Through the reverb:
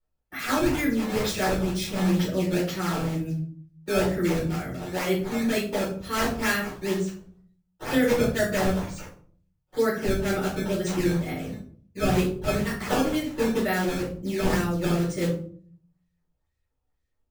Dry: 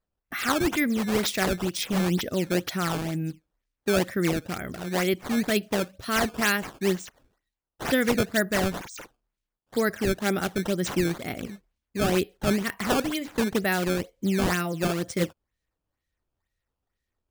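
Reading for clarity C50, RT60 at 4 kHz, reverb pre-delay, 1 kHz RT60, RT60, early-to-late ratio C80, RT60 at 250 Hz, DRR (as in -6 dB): 5.5 dB, 0.30 s, 5 ms, 0.45 s, 0.50 s, 10.0 dB, 0.75 s, -9.5 dB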